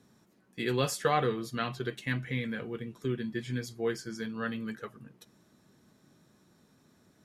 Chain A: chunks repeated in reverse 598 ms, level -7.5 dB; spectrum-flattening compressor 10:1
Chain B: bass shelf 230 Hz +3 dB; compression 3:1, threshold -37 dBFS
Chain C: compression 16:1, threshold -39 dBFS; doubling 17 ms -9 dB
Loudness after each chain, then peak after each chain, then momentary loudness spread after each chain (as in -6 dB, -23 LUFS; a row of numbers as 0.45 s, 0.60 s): -34.5 LUFS, -40.0 LUFS, -44.0 LUFS; -13.5 dBFS, -21.5 dBFS, -26.5 dBFS; 13 LU, 9 LU, 21 LU